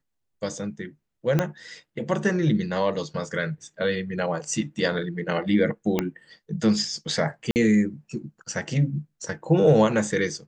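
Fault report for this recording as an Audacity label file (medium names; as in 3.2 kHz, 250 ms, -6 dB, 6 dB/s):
1.390000	1.390000	pop -9 dBFS
5.990000	5.990000	pop -9 dBFS
7.510000	7.560000	dropout 49 ms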